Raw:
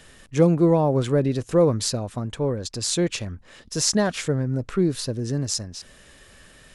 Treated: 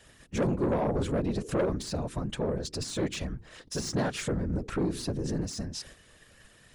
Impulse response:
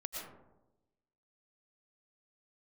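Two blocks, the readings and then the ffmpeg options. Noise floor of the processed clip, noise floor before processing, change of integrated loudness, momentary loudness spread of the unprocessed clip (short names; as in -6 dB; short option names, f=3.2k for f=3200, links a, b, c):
-58 dBFS, -51 dBFS, -8.5 dB, 13 LU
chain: -filter_complex "[0:a]agate=range=-7dB:threshold=-47dB:ratio=16:detection=peak,deesser=0.65,bandreject=f=79.64:t=h:w=4,bandreject=f=159.28:t=h:w=4,bandreject=f=238.92:t=h:w=4,bandreject=f=318.56:t=h:w=4,bandreject=f=398.2:t=h:w=4,asplit=2[a][b];[b]acompressor=threshold=-28dB:ratio=10,volume=2dB[c];[a][c]amix=inputs=2:normalize=0,afftfilt=real='hypot(re,im)*cos(2*PI*random(0))':imag='hypot(re,im)*sin(2*PI*random(1))':win_size=512:overlap=0.75,asoftclip=type=tanh:threshold=-20.5dB,volume=-1.5dB"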